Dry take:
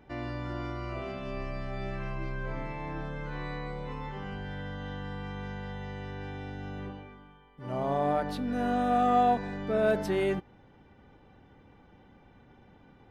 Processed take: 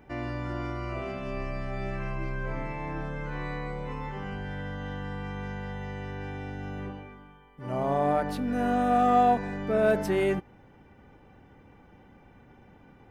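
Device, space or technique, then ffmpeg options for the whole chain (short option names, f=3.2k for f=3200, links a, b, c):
exciter from parts: -filter_complex "[0:a]asplit=2[a][b];[b]highpass=2.4k,asoftclip=type=tanh:threshold=-39.5dB,highpass=f=2.7k:w=0.5412,highpass=f=2.7k:w=1.3066,volume=-5dB[c];[a][c]amix=inputs=2:normalize=0,volume=2.5dB"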